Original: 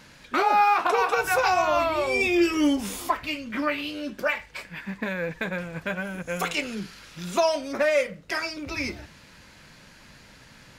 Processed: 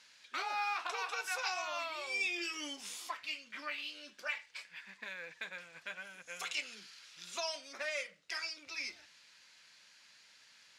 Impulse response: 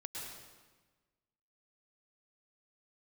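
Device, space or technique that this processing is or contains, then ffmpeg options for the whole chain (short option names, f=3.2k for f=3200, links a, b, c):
piezo pickup straight into a mixer: -af "lowpass=5.1k,aderivative"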